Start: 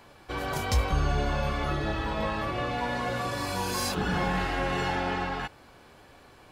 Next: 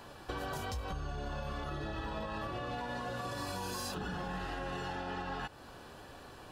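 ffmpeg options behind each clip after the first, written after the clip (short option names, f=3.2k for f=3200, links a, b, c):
-af "alimiter=level_in=3.5dB:limit=-24dB:level=0:latency=1:release=306,volume=-3.5dB,bandreject=f=2.2k:w=5.4,acompressor=threshold=-38dB:ratio=6,volume=2.5dB"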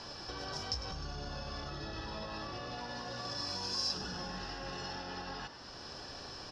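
-filter_complex "[0:a]alimiter=level_in=12dB:limit=-24dB:level=0:latency=1:release=489,volume=-12dB,lowpass=f=5.3k:t=q:w=14,asplit=2[a][b];[b]asplit=7[c][d][e][f][g][h][i];[c]adelay=102,afreqshift=53,volume=-12dB[j];[d]adelay=204,afreqshift=106,volume=-16dB[k];[e]adelay=306,afreqshift=159,volume=-20dB[l];[f]adelay=408,afreqshift=212,volume=-24dB[m];[g]adelay=510,afreqshift=265,volume=-28.1dB[n];[h]adelay=612,afreqshift=318,volume=-32.1dB[o];[i]adelay=714,afreqshift=371,volume=-36.1dB[p];[j][k][l][m][n][o][p]amix=inputs=7:normalize=0[q];[a][q]amix=inputs=2:normalize=0,volume=1.5dB"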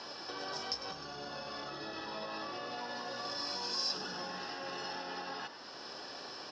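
-af "highpass=270,lowpass=5.8k,volume=2dB"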